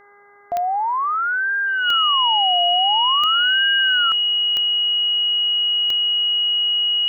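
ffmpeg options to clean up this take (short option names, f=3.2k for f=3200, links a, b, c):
-af "adeclick=t=4,bandreject=f=406.8:t=h:w=4,bandreject=f=813.6:t=h:w=4,bandreject=f=1.2204k:t=h:w=4,bandreject=f=1.6272k:t=h:w=4,bandreject=f=2.034k:t=h:w=4,bandreject=f=2.9k:w=30,afftdn=nr=30:nf=-21"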